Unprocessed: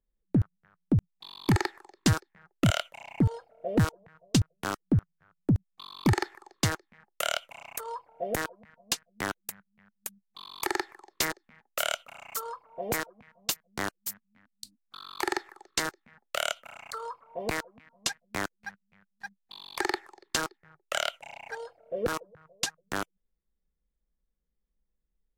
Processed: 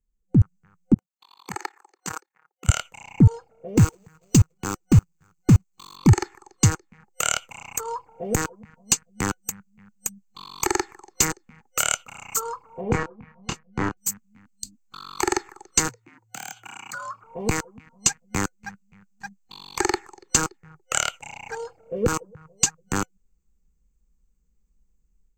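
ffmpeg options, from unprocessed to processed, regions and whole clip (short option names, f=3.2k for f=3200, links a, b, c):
-filter_complex "[0:a]asettb=1/sr,asplit=3[a][b][c];[a]atrim=end=0.944[d];[b]atrim=start=0.94:end=2.69,asetpts=PTS-STARTPTS,afade=t=in:d=0.004:c=qsin,afade=t=out:st=1.746:d=0.004:c=qsin,highpass=740,equalizer=f=5.1k:t=o:w=2.5:g=-8,tremolo=f=35:d=0.919[e];[c]atrim=start=2.686[f];[d][e]acrossfade=d=0.004:c1=hsin:c2=qsin[g];[g][f]acrossfade=d=0.004:c1=qsin:c2=hsin,asettb=1/sr,asplit=3[h][i][j];[h]atrim=end=3.774[k];[i]atrim=start=3.77:end=5.97,asetpts=PTS-STARTPTS,afade=t=in:d=0.004:c=qsin,afade=t=out:st=2.196:d=0.004:c=qsin,equalizer=f=350:w=3.6:g=4,acrusher=bits=2:mode=log:mix=0:aa=0.000001[l];[j]atrim=start=5.966[m];[k][l]acrossfade=d=0.004:c1=hsin:c2=qsin[n];[n][m]acrossfade=d=0.004:c1=qsin:c2=hsin,asettb=1/sr,asplit=3[o][p][q];[o]atrim=end=12.814[r];[p]atrim=start=12.81:end=13.97,asetpts=PTS-STARTPTS,afade=t=in:d=0.004:c=qsin,afade=t=out:st=1.156:d=0.004:c=qsin,lowpass=2.3k,asplit=2[s][t];[t]adelay=27,volume=-5dB[u];[s][u]amix=inputs=2:normalize=0,atrim=end_sample=51156[v];[q]atrim=start=13.966[w];[r][v]acrossfade=d=0.004:c1=hsin:c2=qsin[x];[x][w]acrossfade=d=0.004:c1=qsin:c2=hsin,asettb=1/sr,asplit=3[y][z][aa];[y]atrim=end=15.884[ab];[z]atrim=start=15.88:end=17.24,asetpts=PTS-STARTPTS,afade=t=in:d=0.004:c=qsin,afade=t=out:st=1.356:d=0.004:c=qsin,acompressor=threshold=-34dB:ratio=4:attack=3.2:release=140:knee=1:detection=peak,aeval=exprs='0.0282*(abs(mod(val(0)/0.0282+3,4)-2)-1)':c=same,afreqshift=110[ac];[aa]atrim=start=17.236[ad];[ab][ac]acrossfade=d=0.004:c1=hsin:c2=qsin[ae];[ae][ad]acrossfade=d=0.004:c1=qsin:c2=hsin,bass=f=250:g=9,treble=f=4k:g=-1,dynaudnorm=f=250:g=3:m=10.5dB,superequalizer=8b=0.316:11b=0.631:13b=0.501:15b=3.16:16b=0.282,volume=-4dB"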